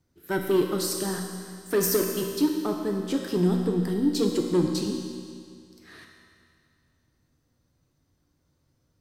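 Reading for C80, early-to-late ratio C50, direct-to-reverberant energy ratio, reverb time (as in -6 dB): 4.5 dB, 3.5 dB, 1.5 dB, 2.2 s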